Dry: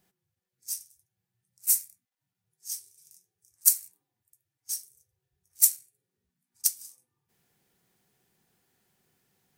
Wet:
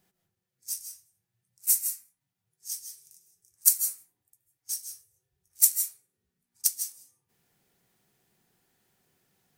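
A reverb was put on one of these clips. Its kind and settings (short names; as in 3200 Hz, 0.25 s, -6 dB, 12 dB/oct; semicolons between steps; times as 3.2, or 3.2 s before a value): digital reverb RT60 0.49 s, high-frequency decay 0.45×, pre-delay 0.115 s, DRR 6 dB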